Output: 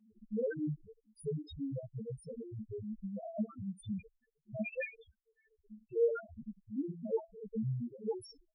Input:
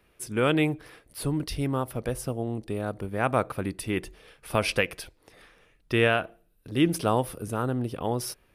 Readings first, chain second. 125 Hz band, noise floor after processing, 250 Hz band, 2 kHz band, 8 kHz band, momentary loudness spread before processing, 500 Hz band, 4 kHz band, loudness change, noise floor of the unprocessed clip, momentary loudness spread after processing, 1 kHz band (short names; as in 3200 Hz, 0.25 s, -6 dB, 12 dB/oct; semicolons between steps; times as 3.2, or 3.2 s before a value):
-12.0 dB, -83 dBFS, -11.0 dB, -18.5 dB, under -20 dB, 10 LU, -9.0 dB, under -25 dB, -11.5 dB, -65 dBFS, 11 LU, -23.5 dB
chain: wind noise 340 Hz -44 dBFS; gate -43 dBFS, range -9 dB; resonator 220 Hz, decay 0.2 s, harmonics all, mix 80%; chorus voices 2, 0.78 Hz, delay 13 ms, depth 2.4 ms; loudest bins only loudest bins 1; notch comb 330 Hz; gain +11.5 dB